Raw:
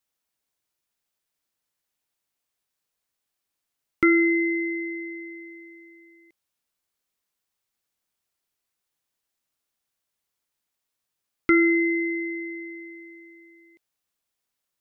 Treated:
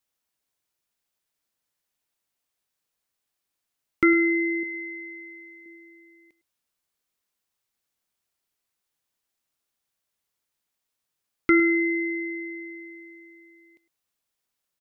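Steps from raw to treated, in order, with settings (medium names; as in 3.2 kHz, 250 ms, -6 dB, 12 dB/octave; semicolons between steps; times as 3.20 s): 4.63–5.66 s: peaking EQ 340 Hz -6.5 dB 2.1 oct; delay 106 ms -17 dB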